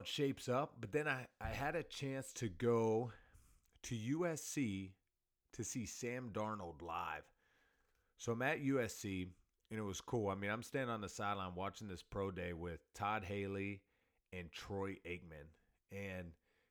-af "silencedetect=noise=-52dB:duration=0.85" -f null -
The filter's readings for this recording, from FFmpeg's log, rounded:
silence_start: 7.21
silence_end: 8.20 | silence_duration: 0.99